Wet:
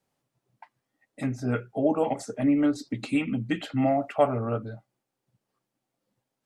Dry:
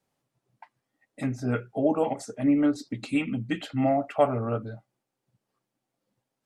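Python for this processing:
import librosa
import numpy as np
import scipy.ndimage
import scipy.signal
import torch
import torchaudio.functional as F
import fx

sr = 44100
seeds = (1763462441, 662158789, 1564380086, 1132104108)

y = fx.band_squash(x, sr, depth_pct=40, at=(2.1, 4.11))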